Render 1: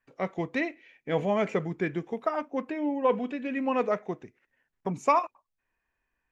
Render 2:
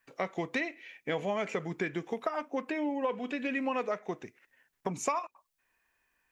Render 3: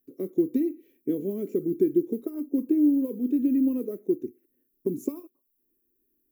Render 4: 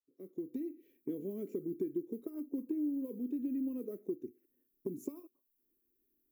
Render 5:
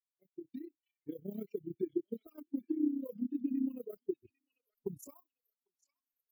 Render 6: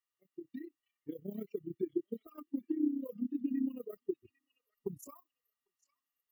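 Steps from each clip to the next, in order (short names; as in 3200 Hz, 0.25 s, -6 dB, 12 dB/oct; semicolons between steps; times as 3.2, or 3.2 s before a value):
tilt +2 dB/oct; compressor 5:1, threshold -34 dBFS, peak gain reduction 14.5 dB; gain +4.5 dB
high shelf 4800 Hz +4.5 dB; modulation noise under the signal 25 dB; EQ curve 170 Hz 0 dB, 250 Hz +12 dB, 360 Hz +15 dB, 770 Hz -27 dB, 1200 Hz -25 dB, 2000 Hz -29 dB, 8600 Hz -13 dB, 12000 Hz +7 dB
opening faded in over 0.96 s; compressor 2:1, threshold -34 dBFS, peak gain reduction 9.5 dB; gain -5.5 dB
per-bin expansion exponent 3; AM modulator 31 Hz, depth 60%; delay with a stepping band-pass 0.798 s, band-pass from 3300 Hz, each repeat 0.7 oct, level -7 dB; gain +9.5 dB
small resonant body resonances 1200/1900/2800 Hz, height 17 dB, ringing for 45 ms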